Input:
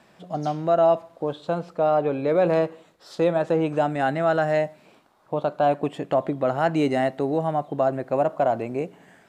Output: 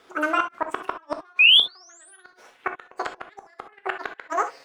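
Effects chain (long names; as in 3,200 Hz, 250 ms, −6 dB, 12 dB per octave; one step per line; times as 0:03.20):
pitch glide at a constant tempo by +6 semitones starting unshifted
high-shelf EQ 3,100 Hz −9 dB
automatic gain control gain up to 6 dB
sound drawn into the spectrogram rise, 0:02.78–0:04.33, 1,200–5,300 Hz −14 dBFS
gate with flip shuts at −10 dBFS, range −38 dB
reverb whose tail is shaped and stops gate 170 ms flat, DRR 6 dB
wrong playback speed 7.5 ips tape played at 15 ips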